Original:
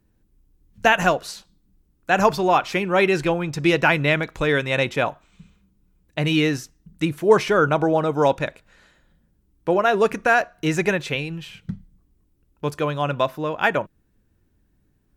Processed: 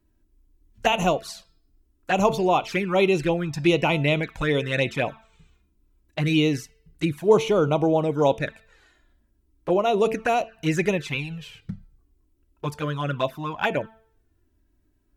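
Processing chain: de-hum 222.9 Hz, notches 23; touch-sensitive flanger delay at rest 3.1 ms, full sweep at -15.5 dBFS

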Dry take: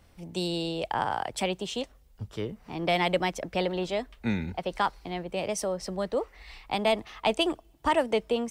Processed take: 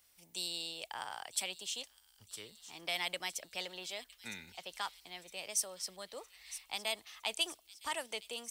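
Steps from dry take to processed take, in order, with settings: pre-emphasis filter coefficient 0.97; feedback echo behind a high-pass 961 ms, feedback 54%, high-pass 4.2 kHz, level -12 dB; trim +2.5 dB

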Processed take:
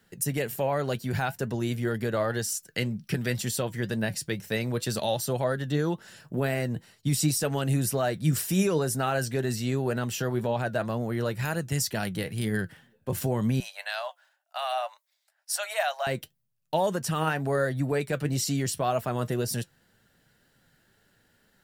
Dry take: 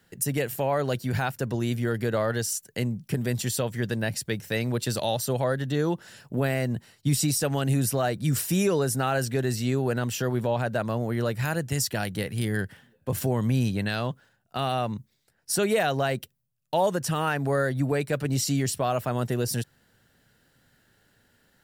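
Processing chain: 2.68–3.38 s: time-frequency box 1.2–6 kHz +6 dB; 13.60–16.07 s: Chebyshev high-pass 590 Hz, order 6; flange 2 Hz, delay 4.3 ms, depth 2.3 ms, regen +71%; trim +3 dB

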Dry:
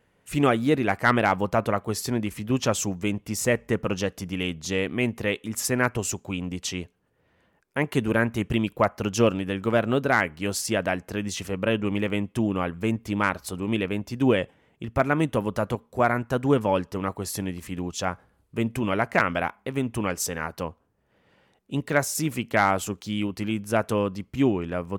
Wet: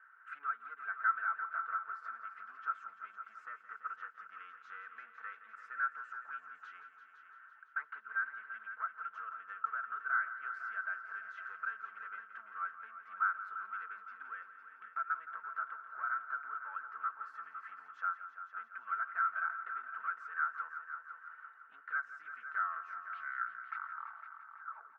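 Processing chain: tape stop on the ending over 2.62 s; comb 4.5 ms, depth 67%; compression 12:1, threshold -38 dBFS, peak gain reduction 25.5 dB; saturation -35.5 dBFS, distortion -16 dB; Butterworth band-pass 1.4 kHz, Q 4.9; multi-head delay 169 ms, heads all three, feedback 49%, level -13.5 dB; trim +18 dB

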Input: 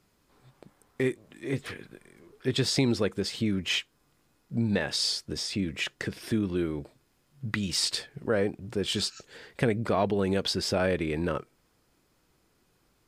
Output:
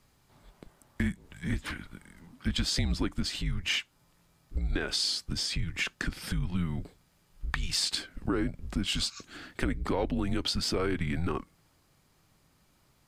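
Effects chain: compression 2.5:1, threshold -30 dBFS, peak gain reduction 7 dB; frequency shift -170 Hz; trim +2.5 dB

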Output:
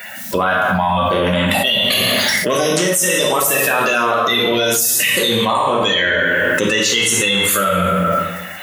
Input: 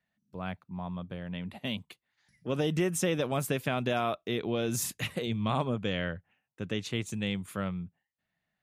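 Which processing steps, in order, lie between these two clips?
coarse spectral quantiser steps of 30 dB; high-pass 1.1 kHz 6 dB/octave; treble shelf 8 kHz +11.5 dB; band-stop 2.4 kHz, Q 20; in parallel at +1 dB: gain riding within 3 dB 0.5 s; on the sum: plate-style reverb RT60 0.93 s, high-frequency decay 0.7×, DRR -2.5 dB; level flattener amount 100%; trim +2 dB

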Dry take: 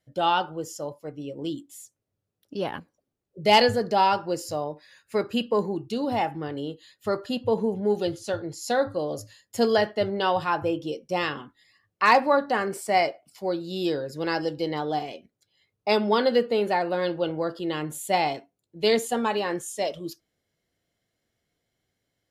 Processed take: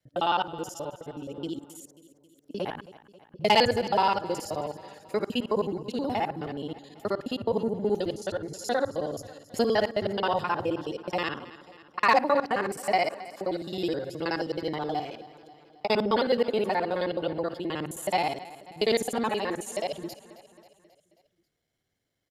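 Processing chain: time reversed locally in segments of 53 ms; on a send: feedback delay 269 ms, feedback 58%, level -17.5 dB; on the sum: trim -2.5 dB

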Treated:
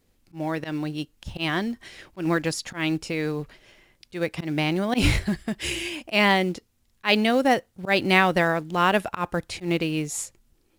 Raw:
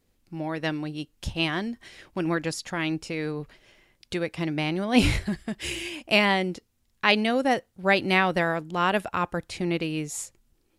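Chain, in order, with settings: slow attack 112 ms; in parallel at -7 dB: short-mantissa float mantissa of 2-bit

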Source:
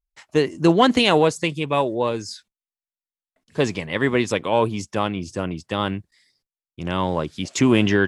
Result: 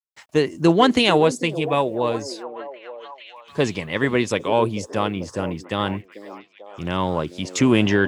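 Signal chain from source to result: bit crusher 11-bit; repeats whose band climbs or falls 442 ms, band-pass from 370 Hz, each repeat 0.7 oct, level -10 dB

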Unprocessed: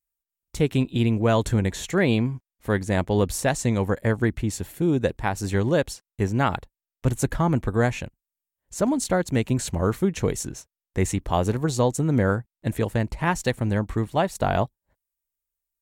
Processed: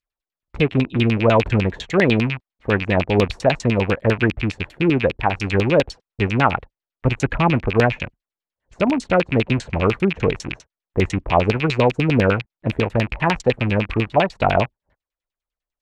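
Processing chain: rattle on loud lows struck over -34 dBFS, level -20 dBFS; LFO low-pass saw down 10 Hz 420–4900 Hz; trim +3 dB

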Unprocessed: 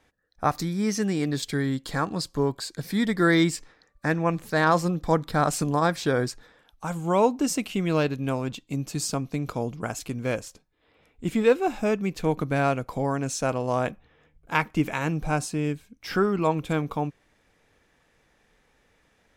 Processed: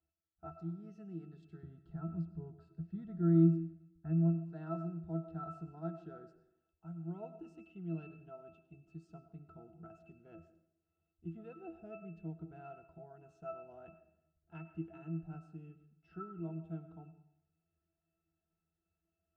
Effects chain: 1.63–4.30 s: tone controls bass +11 dB, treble -7 dB; pitch-class resonator E, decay 0.24 s; reverberation RT60 0.80 s, pre-delay 60 ms, DRR 12 dB; trim -8.5 dB

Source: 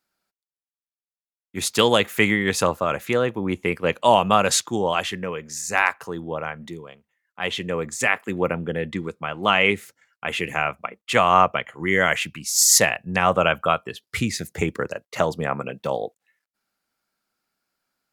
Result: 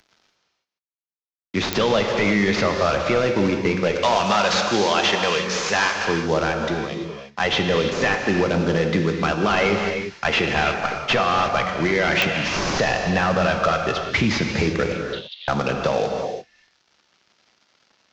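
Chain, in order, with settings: CVSD coder 32 kbps; 3.94–6.05 s: tilt EQ +3 dB/octave; peak limiter -18.5 dBFS, peak gain reduction 10.5 dB; 14.92–15.48 s: Butterworth band-pass 3.5 kHz, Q 4.4; gated-style reverb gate 370 ms flat, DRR 3.5 dB; clicks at 1.73/12.22 s, -12 dBFS; three bands compressed up and down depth 40%; trim +8 dB

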